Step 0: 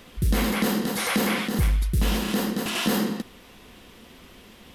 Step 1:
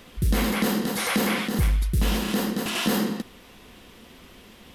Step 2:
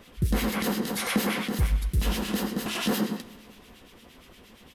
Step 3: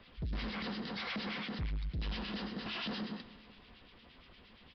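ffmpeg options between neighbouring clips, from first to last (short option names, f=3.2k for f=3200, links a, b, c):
-af anull
-filter_complex "[0:a]acrossover=split=1700[a][b];[a]aeval=exprs='val(0)*(1-0.7/2+0.7/2*cos(2*PI*8.6*n/s))':c=same[c];[b]aeval=exprs='val(0)*(1-0.7/2-0.7/2*cos(2*PI*8.6*n/s))':c=same[d];[c][d]amix=inputs=2:normalize=0,aecho=1:1:188|376|564|752:0.0794|0.0453|0.0258|0.0147"
-filter_complex "[0:a]equalizer=f=370:w=0.65:g=-5.5,acrossover=split=180|3000[a][b][c];[b]acompressor=threshold=-31dB:ratio=6[d];[a][d][c]amix=inputs=3:normalize=0,aresample=11025,asoftclip=type=tanh:threshold=-28.5dB,aresample=44100,volume=-5dB"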